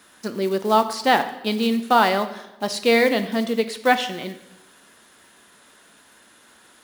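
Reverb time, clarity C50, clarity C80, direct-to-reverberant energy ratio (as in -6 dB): 0.95 s, 12.5 dB, 14.5 dB, 9.5 dB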